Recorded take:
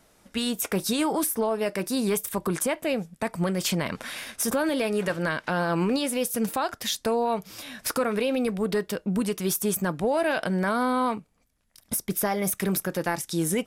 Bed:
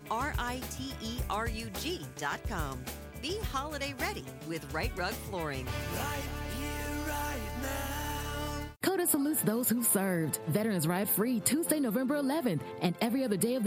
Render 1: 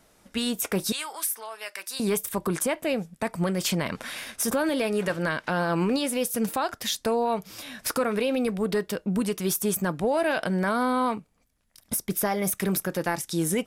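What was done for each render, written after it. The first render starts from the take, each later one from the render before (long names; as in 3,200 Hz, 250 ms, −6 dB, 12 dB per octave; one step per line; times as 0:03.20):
0:00.92–0:02.00: high-pass filter 1,400 Hz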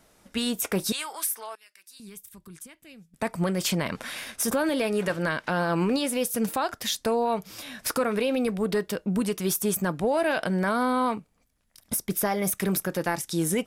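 0:01.55–0:03.14: guitar amp tone stack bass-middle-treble 6-0-2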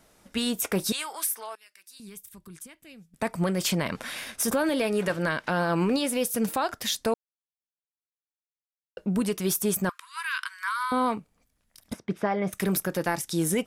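0:07.14–0:08.97: silence
0:09.89–0:10.92: linear-phase brick-wall high-pass 960 Hz
0:11.93–0:12.53: band-pass filter 100–2,400 Hz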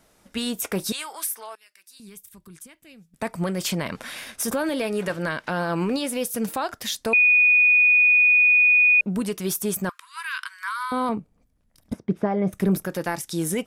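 0:07.13–0:09.01: beep over 2,470 Hz −13 dBFS
0:11.09–0:12.85: tilt shelving filter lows +7 dB, about 820 Hz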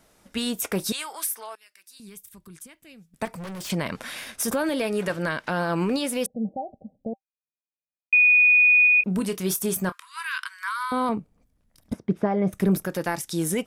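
0:03.25–0:03.70: gain into a clipping stage and back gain 34 dB
0:06.26–0:08.13: Chebyshev low-pass with heavy ripple 810 Hz, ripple 9 dB
0:08.84–0:10.38: double-tracking delay 27 ms −12 dB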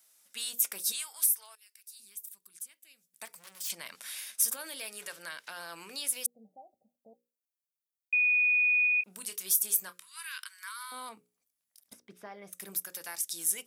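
first difference
mains-hum notches 60/120/180/240/300/360/420/480/540 Hz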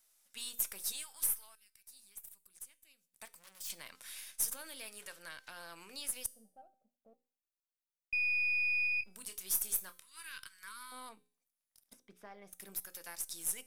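gain on one half-wave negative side −3 dB
tuned comb filter 260 Hz, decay 0.51 s, harmonics all, mix 50%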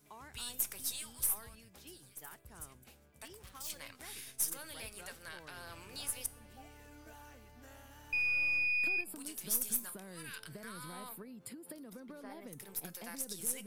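mix in bed −20 dB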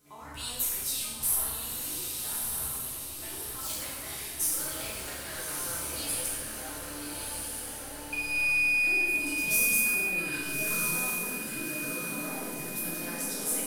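on a send: feedback delay with all-pass diffusion 1,230 ms, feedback 53%, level −3 dB
on the sum: dense smooth reverb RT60 1.3 s, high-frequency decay 0.9×, DRR −7 dB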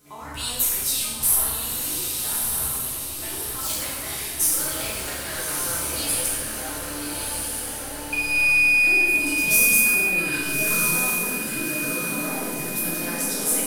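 level +8 dB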